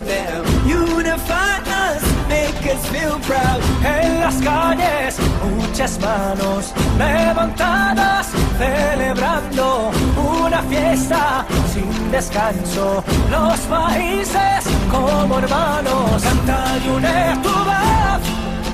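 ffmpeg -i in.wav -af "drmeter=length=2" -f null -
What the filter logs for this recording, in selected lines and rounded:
Channel 1: DR: 7.4
Overall DR: 7.4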